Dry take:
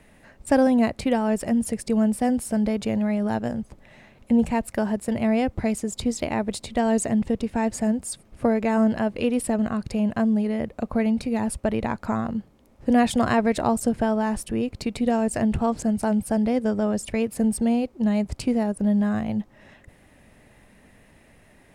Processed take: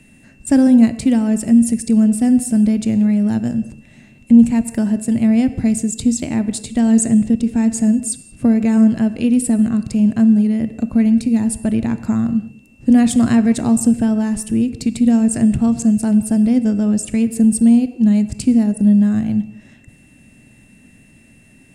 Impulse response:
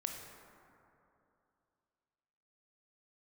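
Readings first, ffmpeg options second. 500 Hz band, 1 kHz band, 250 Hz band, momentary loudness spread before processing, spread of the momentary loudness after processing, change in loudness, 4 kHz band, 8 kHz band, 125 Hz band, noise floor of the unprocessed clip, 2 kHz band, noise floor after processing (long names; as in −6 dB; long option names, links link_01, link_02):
−2.5 dB, −4.5 dB, +10.0 dB, 6 LU, 7 LU, +8.5 dB, can't be measured, +10.0 dB, +9.0 dB, −55 dBFS, −0.5 dB, −48 dBFS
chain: -filter_complex "[0:a]aeval=exprs='val(0)+0.00224*sin(2*PI*2700*n/s)':channel_layout=same,equalizer=frequency=125:width_type=o:width=1:gain=7,equalizer=frequency=250:width_type=o:width=1:gain=10,equalizer=frequency=500:width_type=o:width=1:gain=-5,equalizer=frequency=1000:width_type=o:width=1:gain=-6,equalizer=frequency=8000:width_type=o:width=1:gain=11,asplit=2[link_01][link_02];[1:a]atrim=start_sample=2205,afade=type=out:start_time=0.27:duration=0.01,atrim=end_sample=12348[link_03];[link_02][link_03]afir=irnorm=-1:irlink=0,volume=-3.5dB[link_04];[link_01][link_04]amix=inputs=2:normalize=0,volume=-3.5dB"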